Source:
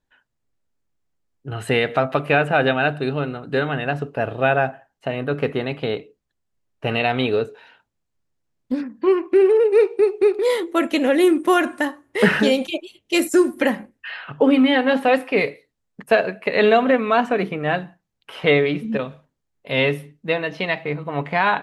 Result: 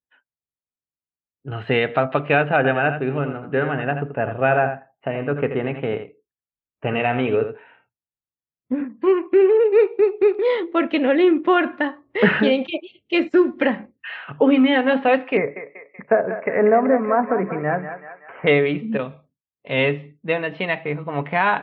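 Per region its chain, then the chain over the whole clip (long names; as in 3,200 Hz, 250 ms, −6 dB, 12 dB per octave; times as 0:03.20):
0:02.56–0:08.85: Butterworth band-reject 5,200 Hz, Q 0.77 + single-tap delay 83 ms −9 dB
0:15.37–0:18.47: treble cut that deepens with the level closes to 1,200 Hz, closed at −15 dBFS + Butterworth low-pass 2,200 Hz 48 dB per octave + feedback echo with a high-pass in the loop 190 ms, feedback 61%, high-pass 620 Hz, level −8 dB
whole clip: inverse Chebyshev low-pass filter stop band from 9,600 Hz, stop band 60 dB; noise reduction from a noise print of the clip's start 20 dB; high-pass filter 52 Hz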